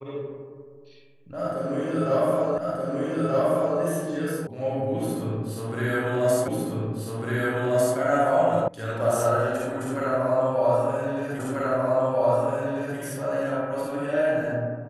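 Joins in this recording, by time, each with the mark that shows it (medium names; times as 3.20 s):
2.58 s: repeat of the last 1.23 s
4.47 s: sound stops dead
6.48 s: repeat of the last 1.5 s
8.68 s: sound stops dead
11.39 s: repeat of the last 1.59 s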